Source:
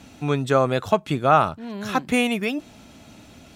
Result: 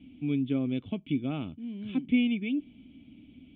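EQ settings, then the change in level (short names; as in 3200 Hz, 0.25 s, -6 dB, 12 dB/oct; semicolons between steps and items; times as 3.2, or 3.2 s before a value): vocal tract filter i; low shelf 81 Hz +6.5 dB; high shelf 3500 Hz +11.5 dB; 0.0 dB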